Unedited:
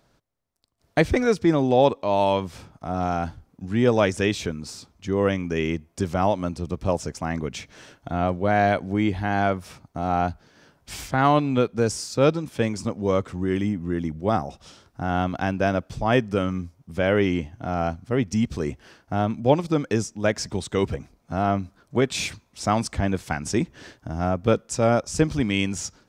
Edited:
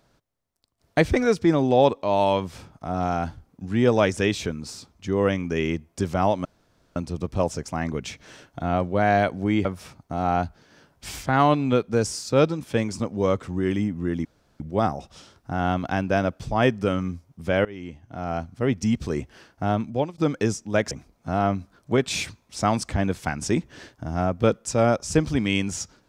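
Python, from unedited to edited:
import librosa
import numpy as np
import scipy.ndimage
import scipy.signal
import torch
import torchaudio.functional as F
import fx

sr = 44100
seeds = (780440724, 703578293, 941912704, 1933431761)

y = fx.edit(x, sr, fx.insert_room_tone(at_s=6.45, length_s=0.51),
    fx.cut(start_s=9.14, length_s=0.36),
    fx.insert_room_tone(at_s=14.1, length_s=0.35),
    fx.fade_in_from(start_s=17.15, length_s=1.03, floor_db=-23.5),
    fx.fade_out_to(start_s=19.28, length_s=0.4, floor_db=-21.0),
    fx.cut(start_s=20.41, length_s=0.54), tone=tone)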